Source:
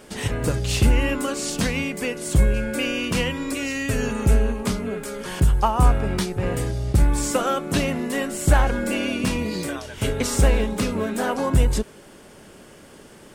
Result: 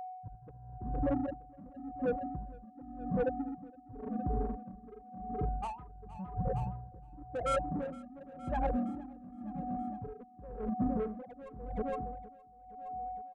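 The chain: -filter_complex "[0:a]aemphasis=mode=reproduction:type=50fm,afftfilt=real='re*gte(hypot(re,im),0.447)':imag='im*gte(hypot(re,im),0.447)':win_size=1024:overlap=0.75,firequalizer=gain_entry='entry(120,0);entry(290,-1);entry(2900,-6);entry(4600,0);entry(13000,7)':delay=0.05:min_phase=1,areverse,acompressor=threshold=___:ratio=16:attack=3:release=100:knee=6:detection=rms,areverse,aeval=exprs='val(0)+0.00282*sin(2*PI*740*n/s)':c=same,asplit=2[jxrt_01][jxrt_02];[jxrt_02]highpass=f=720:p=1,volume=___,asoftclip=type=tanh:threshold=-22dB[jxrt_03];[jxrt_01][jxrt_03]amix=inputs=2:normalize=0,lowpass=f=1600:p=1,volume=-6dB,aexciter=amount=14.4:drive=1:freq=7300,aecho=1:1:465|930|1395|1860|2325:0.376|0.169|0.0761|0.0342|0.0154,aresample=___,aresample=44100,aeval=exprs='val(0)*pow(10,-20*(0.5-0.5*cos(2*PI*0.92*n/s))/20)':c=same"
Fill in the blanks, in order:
-27dB, 21dB, 22050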